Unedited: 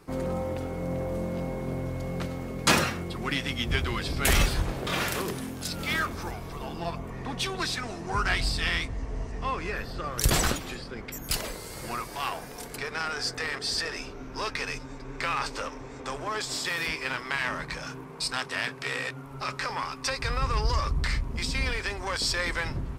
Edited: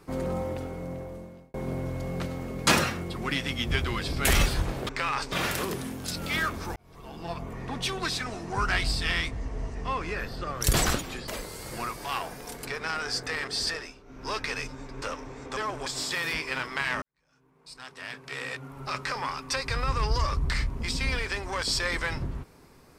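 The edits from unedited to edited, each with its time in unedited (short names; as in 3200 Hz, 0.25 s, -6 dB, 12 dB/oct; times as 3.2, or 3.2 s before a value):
0.41–1.54 fade out
6.33–7.05 fade in
10.85–11.39 cut
13.81–14.4 dip -12 dB, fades 0.24 s
15.13–15.56 move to 4.89
16.11–16.4 reverse
17.56–19.31 fade in quadratic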